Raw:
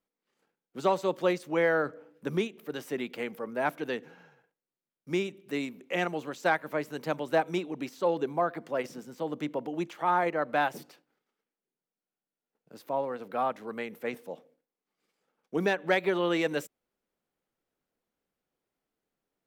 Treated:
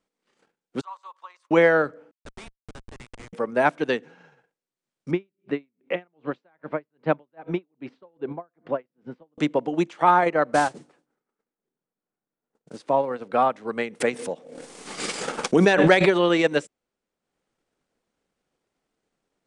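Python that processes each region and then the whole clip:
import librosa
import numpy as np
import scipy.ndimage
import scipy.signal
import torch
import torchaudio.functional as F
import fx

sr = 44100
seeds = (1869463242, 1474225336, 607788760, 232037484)

y = fx.chain(x, sr, fx.level_steps(step_db=19),
    fx.ladder_highpass(hz=990.0, resonance_pct=80), at=(0.81, 1.51))
y = fx.chain(y, sr, fx.ladder_highpass(hz=700.0, resonance_pct=30),
    fx.schmitt(flips_db=-45.0), at=(2.11, 3.33))
y = fx.chain(y, sr, fx.air_absorb(metres=400.0),
    fx.tremolo_db(hz=2.5, depth_db=38), at=(5.11, 9.38))
y = fx.chain(y, sr, fx.lowpass(hz=1400.0, slope=12),
    fx.peak_eq(hz=670.0, db=-2.5, octaves=1.0),
    fx.mod_noise(seeds[0], snr_db=13), at=(10.53, 12.77))
y = fx.chain(y, sr, fx.high_shelf(hz=7600.0, db=11.0),
    fx.pre_swell(db_per_s=22.0), at=(14.0, 16.31))
y = scipy.signal.sosfilt(scipy.signal.butter(12, 9600.0, 'lowpass', fs=sr, output='sos'), y)
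y = fx.transient(y, sr, attack_db=4, sustain_db=-6)
y = y * 10.0 ** (7.5 / 20.0)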